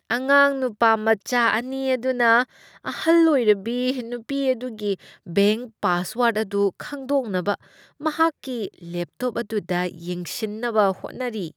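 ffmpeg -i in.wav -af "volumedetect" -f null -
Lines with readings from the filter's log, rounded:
mean_volume: -22.8 dB
max_volume: -5.0 dB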